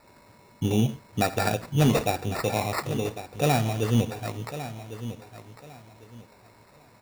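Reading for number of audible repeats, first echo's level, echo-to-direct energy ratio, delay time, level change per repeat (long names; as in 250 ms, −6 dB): 2, −12.5 dB, −12.0 dB, 1,102 ms, −12.0 dB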